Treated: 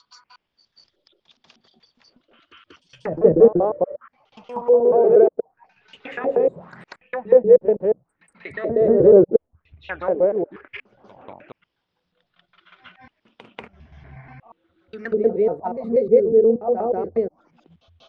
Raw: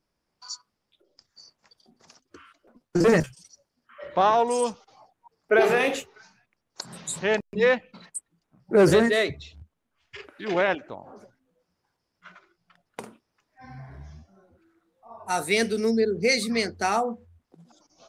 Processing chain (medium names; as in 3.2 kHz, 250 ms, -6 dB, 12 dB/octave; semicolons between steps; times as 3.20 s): slices played last to first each 120 ms, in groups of 6; reverse echo 189 ms -8.5 dB; touch-sensitive low-pass 500–3600 Hz down, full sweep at -23 dBFS; trim -1 dB